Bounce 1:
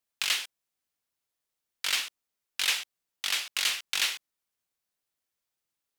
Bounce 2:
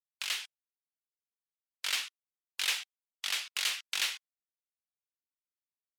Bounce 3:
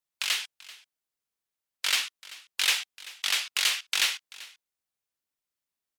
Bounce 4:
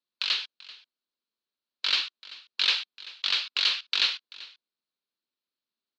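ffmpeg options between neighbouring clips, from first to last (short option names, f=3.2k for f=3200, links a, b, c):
-af "afftdn=nr=23:nf=-49,dynaudnorm=f=160:g=5:m=4dB,volume=-8dB"
-af "aecho=1:1:387:0.106,volume=6.5dB"
-af "highpass=200,equalizer=f=230:t=q:w=4:g=7,equalizer=f=360:t=q:w=4:g=3,equalizer=f=760:t=q:w=4:g=-7,equalizer=f=2k:t=q:w=4:g=-7,equalizer=f=4.2k:t=q:w=4:g=9,lowpass=f=4.4k:w=0.5412,lowpass=f=4.4k:w=1.3066"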